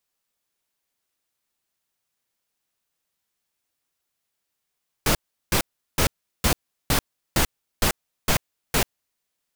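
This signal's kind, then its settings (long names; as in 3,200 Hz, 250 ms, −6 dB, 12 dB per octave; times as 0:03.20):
noise bursts pink, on 0.09 s, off 0.37 s, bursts 9, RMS −19.5 dBFS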